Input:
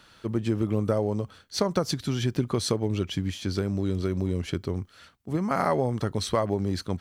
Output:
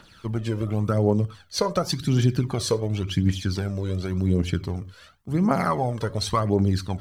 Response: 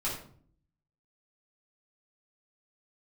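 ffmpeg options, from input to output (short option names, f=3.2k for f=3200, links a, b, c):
-filter_complex "[0:a]asplit=2[a][b];[1:a]atrim=start_sample=2205,afade=t=out:st=0.17:d=0.01,atrim=end_sample=7938[c];[b][c]afir=irnorm=-1:irlink=0,volume=-18.5dB[d];[a][d]amix=inputs=2:normalize=0,aphaser=in_gain=1:out_gain=1:delay=2.1:decay=0.59:speed=0.91:type=triangular"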